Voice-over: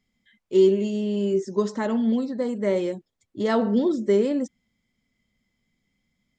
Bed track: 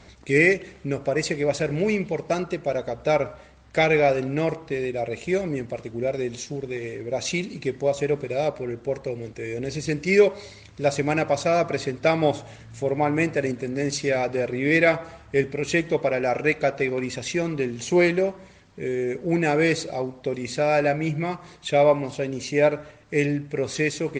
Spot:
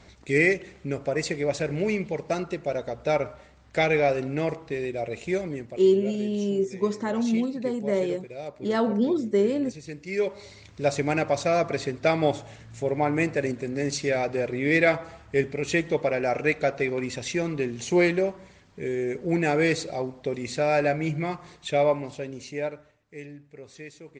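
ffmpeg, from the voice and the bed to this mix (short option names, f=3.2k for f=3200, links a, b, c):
-filter_complex "[0:a]adelay=5250,volume=-2dB[a];[1:a]volume=7.5dB,afade=t=out:st=5.33:d=0.57:silence=0.334965,afade=t=in:st=10.11:d=0.52:silence=0.298538,afade=t=out:st=21.43:d=1.58:silence=0.149624[b];[a][b]amix=inputs=2:normalize=0"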